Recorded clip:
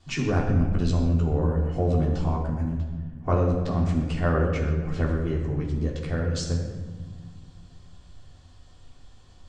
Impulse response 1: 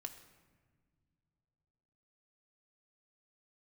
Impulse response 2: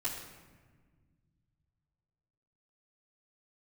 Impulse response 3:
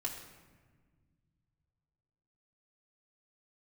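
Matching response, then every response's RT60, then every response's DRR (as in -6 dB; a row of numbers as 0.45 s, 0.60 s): 2; no single decay rate, 1.5 s, 1.5 s; 4.5 dB, -11.5 dB, -3.0 dB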